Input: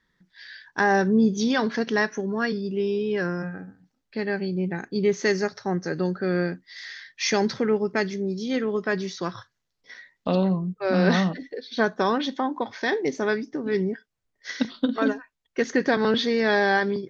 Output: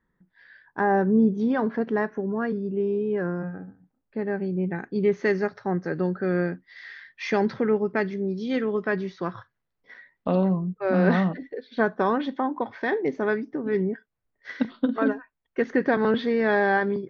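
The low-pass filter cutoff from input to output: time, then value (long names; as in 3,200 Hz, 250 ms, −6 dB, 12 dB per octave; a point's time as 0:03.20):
0:04.28 1,200 Hz
0:04.72 2,200 Hz
0:08.16 2,200 Hz
0:08.57 3,600 Hz
0:09.09 2,000 Hz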